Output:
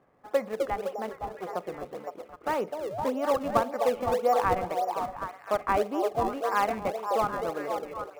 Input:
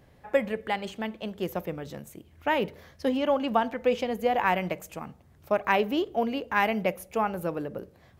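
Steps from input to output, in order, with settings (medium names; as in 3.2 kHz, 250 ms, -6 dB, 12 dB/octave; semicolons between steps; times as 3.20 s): 1.09–1.49 s: comb filter that takes the minimum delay 2 ms; 2.89–3.09 s: painted sound rise 520–1100 Hz -33 dBFS; cabinet simulation 240–2200 Hz, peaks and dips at 470 Hz +3 dB, 740 Hz +5 dB, 1.2 kHz +10 dB, 1.8 kHz -3 dB; repeats whose band climbs or falls 256 ms, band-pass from 480 Hz, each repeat 0.7 oct, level -1.5 dB; in parallel at -10 dB: decimation with a swept rate 33×, swing 160% 1.8 Hz; on the sum: trim -6 dB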